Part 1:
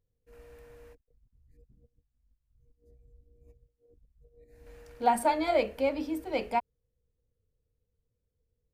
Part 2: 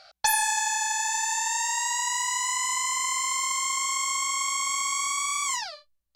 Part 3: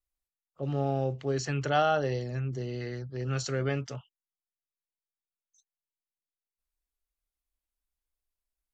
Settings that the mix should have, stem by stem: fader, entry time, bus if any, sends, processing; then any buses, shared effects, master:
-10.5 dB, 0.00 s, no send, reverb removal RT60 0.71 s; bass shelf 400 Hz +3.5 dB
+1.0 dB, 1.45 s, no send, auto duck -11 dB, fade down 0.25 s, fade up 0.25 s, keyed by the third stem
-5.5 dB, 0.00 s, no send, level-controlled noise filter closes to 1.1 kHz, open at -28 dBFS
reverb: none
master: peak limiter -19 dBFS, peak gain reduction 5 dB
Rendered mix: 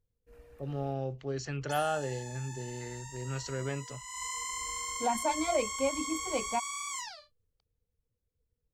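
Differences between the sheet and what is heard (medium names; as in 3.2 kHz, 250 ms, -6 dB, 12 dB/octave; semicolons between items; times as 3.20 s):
stem 1 -10.5 dB -> -3.5 dB; stem 2 +1.0 dB -> -10.0 dB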